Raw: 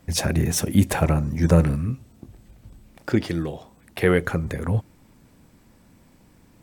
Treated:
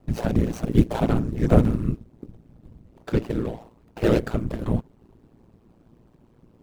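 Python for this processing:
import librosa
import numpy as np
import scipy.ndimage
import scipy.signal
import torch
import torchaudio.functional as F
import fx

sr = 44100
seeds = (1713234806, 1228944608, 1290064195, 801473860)

y = scipy.ndimage.median_filter(x, 25, mode='constant')
y = fx.whisperise(y, sr, seeds[0])
y = y * np.sin(2.0 * np.pi * 57.0 * np.arange(len(y)) / sr)
y = y * 10.0 ** (3.0 / 20.0)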